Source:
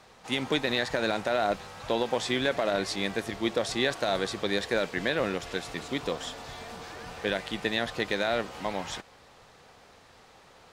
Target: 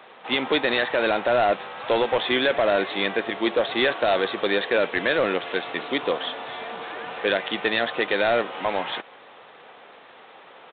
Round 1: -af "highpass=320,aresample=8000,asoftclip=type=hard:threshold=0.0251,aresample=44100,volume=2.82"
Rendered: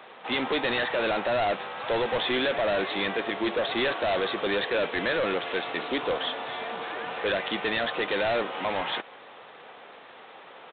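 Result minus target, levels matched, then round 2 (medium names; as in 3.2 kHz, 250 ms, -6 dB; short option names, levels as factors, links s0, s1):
hard clipper: distortion +7 dB
-af "highpass=320,aresample=8000,asoftclip=type=hard:threshold=0.0631,aresample=44100,volume=2.82"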